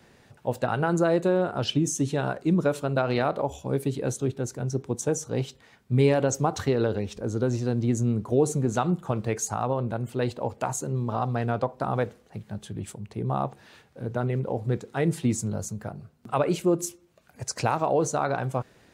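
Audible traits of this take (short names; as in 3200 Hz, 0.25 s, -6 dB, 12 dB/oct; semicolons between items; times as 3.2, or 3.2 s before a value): noise floor -59 dBFS; spectral tilt -6.0 dB/oct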